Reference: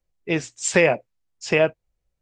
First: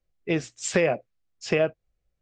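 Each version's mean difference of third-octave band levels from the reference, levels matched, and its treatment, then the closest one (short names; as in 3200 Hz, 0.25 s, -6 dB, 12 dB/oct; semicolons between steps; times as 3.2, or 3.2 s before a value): 1.5 dB: notch 920 Hz, Q 6.1; dynamic EQ 2200 Hz, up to -4 dB, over -32 dBFS, Q 1.4; compressor 2:1, threshold -20 dBFS, peak gain reduction 4.5 dB; air absorption 63 m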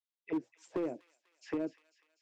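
6.5 dB: bell 5900 Hz +2.5 dB 0.61 oct; auto-wah 300–3700 Hz, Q 5.4, down, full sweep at -19 dBFS; hard clip -24.5 dBFS, distortion -14 dB; on a send: thin delay 0.247 s, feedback 58%, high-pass 2500 Hz, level -11.5 dB; on the sum: gain -4 dB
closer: first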